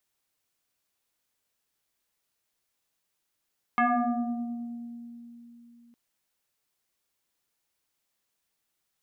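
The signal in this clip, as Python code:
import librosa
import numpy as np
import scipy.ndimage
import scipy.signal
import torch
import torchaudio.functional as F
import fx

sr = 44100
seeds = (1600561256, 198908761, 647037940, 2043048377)

y = fx.fm2(sr, length_s=2.16, level_db=-19.5, carrier_hz=236.0, ratio=2.04, index=3.6, index_s=2.02, decay_s=3.68, shape='exponential')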